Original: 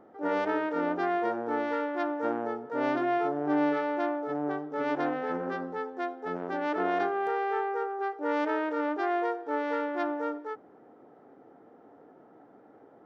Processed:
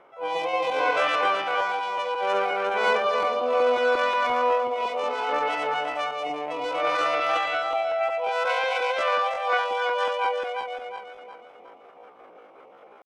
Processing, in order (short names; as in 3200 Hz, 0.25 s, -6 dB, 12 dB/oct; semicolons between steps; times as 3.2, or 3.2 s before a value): regenerating reverse delay 0.18 s, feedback 62%, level -1.5 dB; rotary speaker horn 0.65 Hz, later 5.5 Hz, at 9.12; pitch shift +9 st; gain +4.5 dB